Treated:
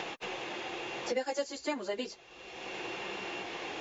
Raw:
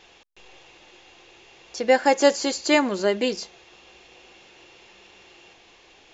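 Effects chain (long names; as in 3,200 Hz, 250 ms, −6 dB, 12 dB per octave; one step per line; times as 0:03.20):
dynamic equaliser 190 Hz, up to −7 dB, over −53 dBFS, Q 3
time stretch by phase vocoder 0.62×
multiband upward and downward compressor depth 100%
level −8 dB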